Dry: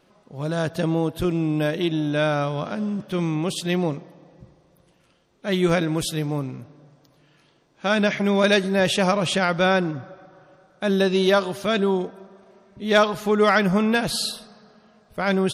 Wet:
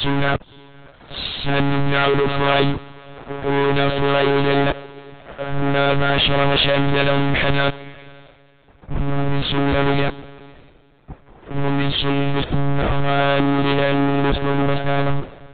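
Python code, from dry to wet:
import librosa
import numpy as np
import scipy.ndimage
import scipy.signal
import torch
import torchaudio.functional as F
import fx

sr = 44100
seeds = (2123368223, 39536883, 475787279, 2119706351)

y = np.flip(x).copy()
y = fx.fuzz(y, sr, gain_db=43.0, gate_db=-45.0)
y = fx.echo_diffused(y, sr, ms=565, feedback_pct=40, wet_db=-15)
y = fx.lpc_monotone(y, sr, seeds[0], pitch_hz=140.0, order=16)
y = fx.band_widen(y, sr, depth_pct=70)
y = F.gain(torch.from_numpy(y), -2.5).numpy()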